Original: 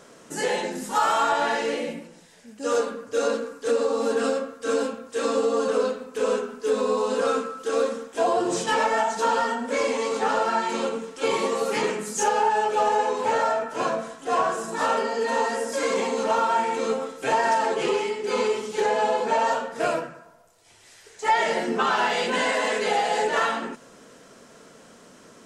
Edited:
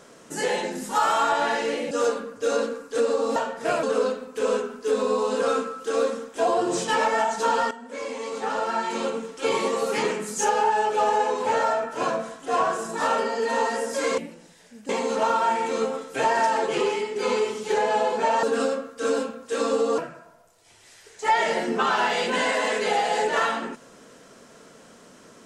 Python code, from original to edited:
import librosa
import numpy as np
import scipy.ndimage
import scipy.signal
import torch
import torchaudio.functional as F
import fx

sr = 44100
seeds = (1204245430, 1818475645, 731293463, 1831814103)

y = fx.edit(x, sr, fx.move(start_s=1.91, length_s=0.71, to_s=15.97),
    fx.swap(start_s=4.07, length_s=1.55, other_s=19.51, other_length_s=0.47),
    fx.fade_in_from(start_s=9.5, length_s=1.48, floor_db=-14.0), tone=tone)